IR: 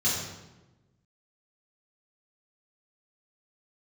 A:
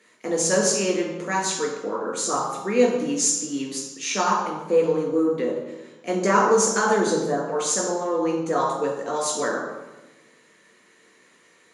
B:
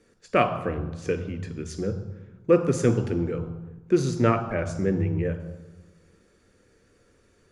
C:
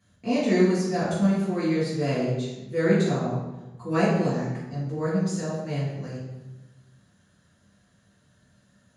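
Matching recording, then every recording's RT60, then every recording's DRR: C; 1.1, 1.1, 1.1 s; -1.0, 9.0, -8.5 dB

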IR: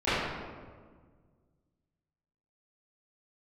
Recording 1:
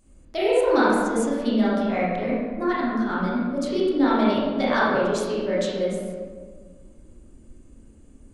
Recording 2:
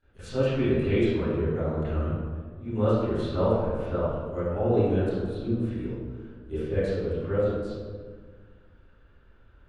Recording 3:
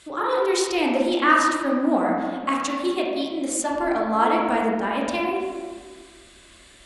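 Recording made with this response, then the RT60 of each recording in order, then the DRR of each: 2; 1.6, 1.6, 1.6 s; -8.5, -18.0, -3.0 dB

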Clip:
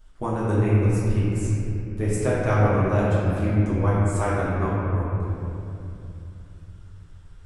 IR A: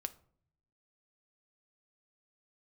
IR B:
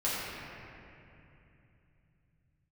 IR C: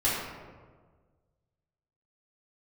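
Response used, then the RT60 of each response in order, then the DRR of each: B; 0.55, 2.8, 1.5 s; 10.0, -10.0, -11.0 dB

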